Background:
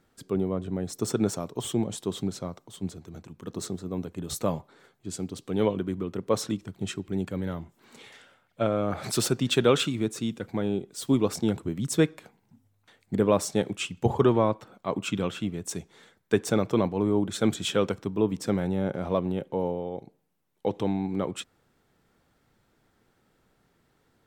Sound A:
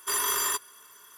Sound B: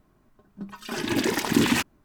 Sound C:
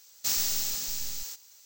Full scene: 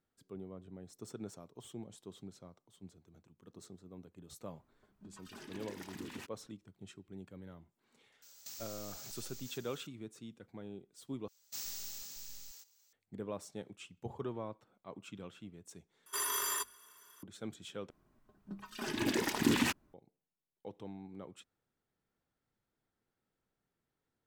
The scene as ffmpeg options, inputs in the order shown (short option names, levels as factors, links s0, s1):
-filter_complex "[2:a]asplit=2[s0][s1];[3:a]asplit=2[s2][s3];[0:a]volume=0.106[s4];[s0]acompressor=threshold=0.00447:ratio=2:attack=67:release=126:knee=1:detection=rms[s5];[s2]acompressor=threshold=0.00794:ratio=6:attack=3.2:release=140:knee=1:detection=peak[s6];[1:a]bandreject=f=50:t=h:w=6,bandreject=f=100:t=h:w=6,bandreject=f=150:t=h:w=6,bandreject=f=200:t=h:w=6,bandreject=f=250:t=h:w=6[s7];[s4]asplit=4[s8][s9][s10][s11];[s8]atrim=end=11.284[s12];[s3]atrim=end=1.65,asetpts=PTS-STARTPTS,volume=0.178[s13];[s9]atrim=start=12.926:end=16.064[s14];[s7]atrim=end=1.17,asetpts=PTS-STARTPTS,volume=0.398[s15];[s10]atrim=start=17.226:end=17.904[s16];[s1]atrim=end=2.04,asetpts=PTS-STARTPTS,volume=0.376[s17];[s11]atrim=start=19.936[s18];[s5]atrim=end=2.04,asetpts=PTS-STARTPTS,volume=0.237,afade=t=in:d=0.004:c=hsin,afade=t=out:st=2.036:d=0.004:c=hsin,adelay=4440[s19];[s6]atrim=end=1.65,asetpts=PTS-STARTPTS,volume=0.631,afade=t=in:d=0.004:c=hsin,afade=t=out:st=1.646:d=0.004:c=hsin,adelay=8220[s20];[s12][s13]acrossfade=d=0.004:c1=hsin:c2=hsin[s21];[s21][s14]acrossfade=d=0.004:c1=hsin:c2=hsin[s22];[s22][s15]acrossfade=d=0.004:c1=hsin:c2=hsin[s23];[s23][s16]acrossfade=d=0.004:c1=hsin:c2=hsin[s24];[s24][s17]acrossfade=d=0.004:c1=hsin:c2=hsin[s25];[s25][s18]acrossfade=d=0.004:c1=hsin:c2=hsin[s26];[s26][s19][s20]amix=inputs=3:normalize=0"